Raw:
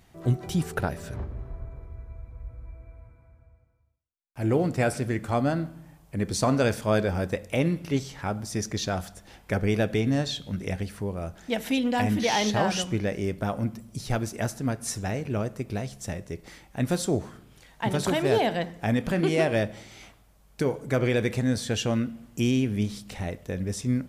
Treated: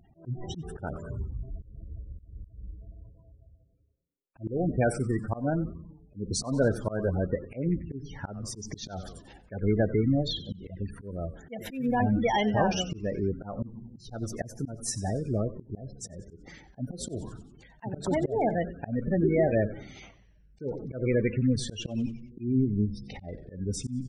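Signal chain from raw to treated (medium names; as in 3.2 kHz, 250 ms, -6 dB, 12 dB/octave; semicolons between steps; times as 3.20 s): spectral gate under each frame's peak -15 dB strong; frequency-shifting echo 92 ms, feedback 51%, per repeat -120 Hz, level -16 dB; slow attack 195 ms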